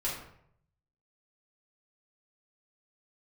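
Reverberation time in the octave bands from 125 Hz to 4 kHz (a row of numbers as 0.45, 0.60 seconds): 1.1, 0.70, 0.70, 0.65, 0.60, 0.45 seconds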